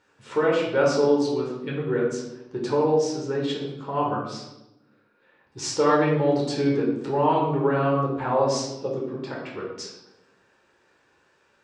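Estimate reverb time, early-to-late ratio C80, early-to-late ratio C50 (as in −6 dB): 0.95 s, 6.0 dB, 3.0 dB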